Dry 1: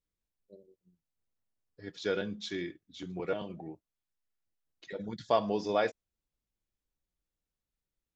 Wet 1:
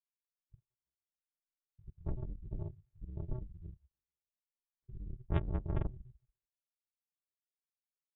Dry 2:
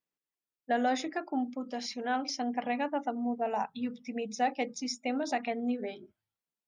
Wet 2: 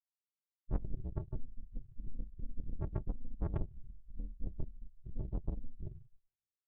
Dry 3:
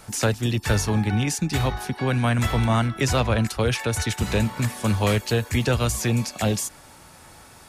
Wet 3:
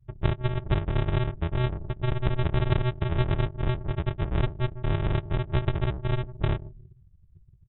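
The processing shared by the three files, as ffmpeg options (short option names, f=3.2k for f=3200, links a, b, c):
-filter_complex "[0:a]equalizer=f=550:w=5.8:g=-5.5,asplit=2[a][b];[b]adelay=147,lowpass=f=1.5k:p=1,volume=-15.5dB,asplit=2[c][d];[d]adelay=147,lowpass=f=1.5k:p=1,volume=0.49,asplit=2[e][f];[f]adelay=147,lowpass=f=1.5k:p=1,volume=0.49,asplit=2[g][h];[h]adelay=147,lowpass=f=1.5k:p=1,volume=0.49[i];[a][c][e][g][i]amix=inputs=5:normalize=0,aresample=8000,acrusher=samples=32:mix=1:aa=0.000001,aresample=44100,afftdn=nr=32:nf=-37,volume=-3dB"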